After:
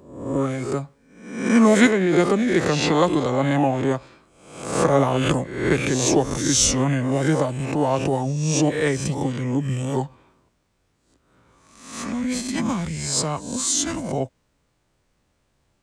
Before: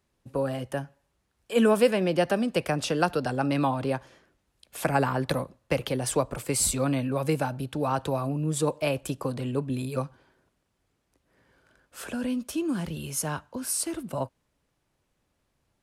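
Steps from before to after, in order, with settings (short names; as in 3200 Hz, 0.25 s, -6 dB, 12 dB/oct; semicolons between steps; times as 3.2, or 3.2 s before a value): spectral swells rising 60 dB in 0.72 s; formant shift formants -5 st; gain +4.5 dB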